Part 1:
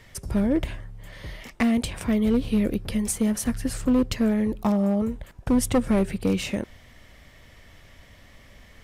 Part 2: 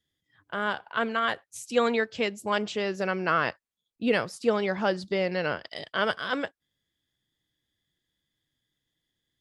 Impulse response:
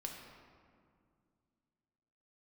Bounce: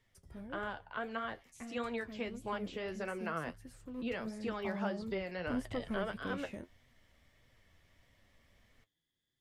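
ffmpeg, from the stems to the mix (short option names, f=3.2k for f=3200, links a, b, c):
-filter_complex "[0:a]volume=-13dB,afade=t=in:st=4.11:d=0.61:silence=0.446684[a];[1:a]acrossover=split=360|910[b][c][d];[b]acompressor=threshold=-39dB:ratio=4[e];[c]acompressor=threshold=-36dB:ratio=4[f];[d]acompressor=threshold=-36dB:ratio=4[g];[e][f][g]amix=inputs=3:normalize=0,volume=-2dB[h];[a][h]amix=inputs=2:normalize=0,acrossover=split=3000[i][j];[j]acompressor=threshold=-52dB:ratio=4:attack=1:release=60[k];[i][k]amix=inputs=2:normalize=0,flanger=delay=7.2:depth=6:regen=51:speed=1.6:shape=triangular"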